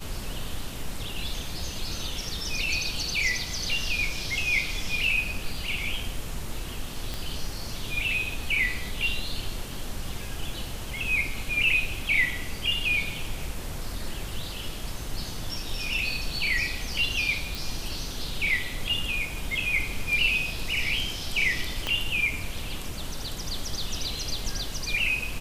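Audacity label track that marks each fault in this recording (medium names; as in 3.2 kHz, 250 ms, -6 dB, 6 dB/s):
7.140000	7.140000	pop
17.550000	17.550000	pop
21.870000	21.870000	pop -14 dBFS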